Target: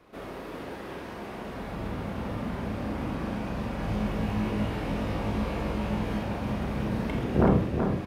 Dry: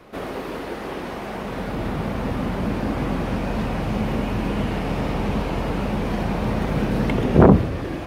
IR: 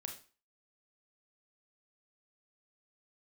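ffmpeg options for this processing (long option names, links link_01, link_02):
-filter_complex "[0:a]asettb=1/sr,asplit=3[link_01][link_02][link_03];[link_01]atrim=end=3.774[link_04];[link_02]atrim=start=3.77:end=6.19,asetpts=PTS-STARTPTS,afade=type=in:duration=0.004:curve=qsin,afade=type=out:start_time=2.416:duration=0.004:curve=qsin,asplit=2[link_05][link_06];[link_06]adelay=19,volume=-2.5dB[link_07];[link_05][link_07]amix=inputs=2:normalize=0,atrim=end_sample=106722[link_08];[link_03]atrim=start=6.186[link_09];[link_04][link_08]acrossfade=duration=0.004:curve1=hsin:curve2=qsin[link_10];[link_10][link_09]acrossfade=duration=0.004:curve1=qsin:curve2=hsin,aecho=1:1:378:0.501[link_11];[1:a]atrim=start_sample=2205[link_12];[link_11][link_12]afir=irnorm=-1:irlink=0,volume=-6.5dB"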